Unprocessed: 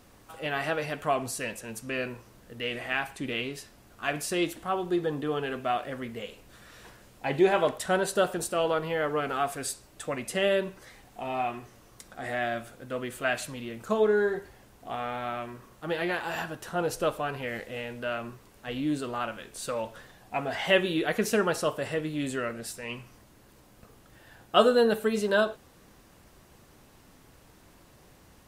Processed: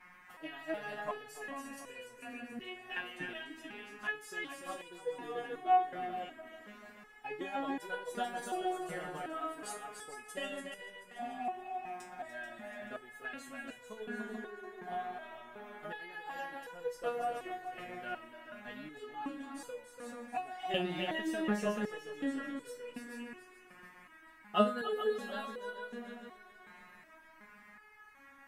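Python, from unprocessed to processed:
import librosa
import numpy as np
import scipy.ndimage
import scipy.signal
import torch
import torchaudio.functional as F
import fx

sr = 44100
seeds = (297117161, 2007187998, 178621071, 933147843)

y = fx.transient(x, sr, attack_db=6, sustain_db=-2)
y = fx.echo_heads(y, sr, ms=145, heads='second and third', feedback_pct=45, wet_db=-6.5)
y = fx.dmg_noise_band(y, sr, seeds[0], low_hz=900.0, high_hz=2300.0, level_db=-45.0)
y = fx.small_body(y, sr, hz=(230.0, 760.0, 1700.0), ring_ms=30, db=8)
y = fx.resonator_held(y, sr, hz=2.7, low_hz=180.0, high_hz=490.0)
y = y * librosa.db_to_amplitude(-2.0)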